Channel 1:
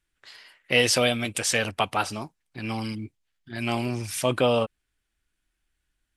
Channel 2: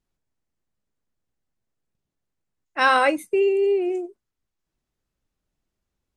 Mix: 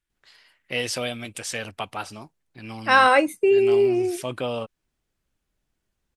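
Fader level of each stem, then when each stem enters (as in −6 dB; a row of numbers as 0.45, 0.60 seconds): −6.5, +2.0 decibels; 0.00, 0.10 seconds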